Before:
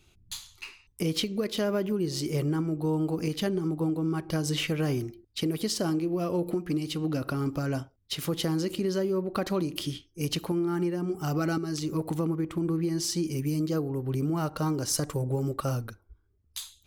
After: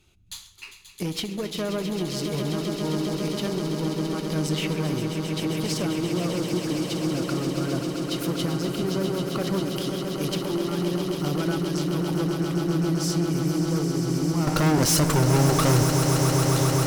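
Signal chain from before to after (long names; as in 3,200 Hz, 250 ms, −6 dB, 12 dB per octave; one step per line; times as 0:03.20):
0:14.47–0:15.83: leveller curve on the samples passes 5
asymmetric clip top −26.5 dBFS
echo that builds up and dies away 133 ms, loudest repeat 8, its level −10 dB
on a send at −16 dB: convolution reverb RT60 1.2 s, pre-delay 3 ms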